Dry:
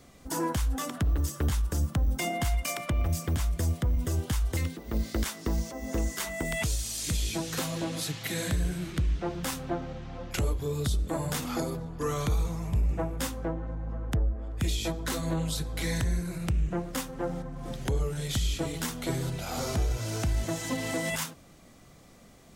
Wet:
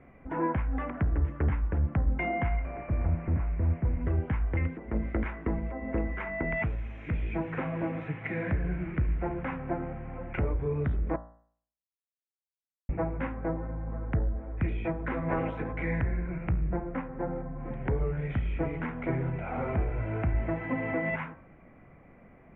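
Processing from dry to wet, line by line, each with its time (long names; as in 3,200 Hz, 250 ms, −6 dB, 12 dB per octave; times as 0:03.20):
0:02.59–0:04.02: linear delta modulator 16 kbit/s, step −48.5 dBFS
0:11.16–0:12.89: silence
0:15.28–0:15.71: ceiling on every frequency bin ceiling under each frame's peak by 17 dB
0:16.51–0:17.60: low-pass filter 1,700 Hz 6 dB per octave
whole clip: elliptic low-pass filter 2,300 Hz, stop band 50 dB; notch filter 1,200 Hz, Q 17; hum removal 57.59 Hz, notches 34; level +2 dB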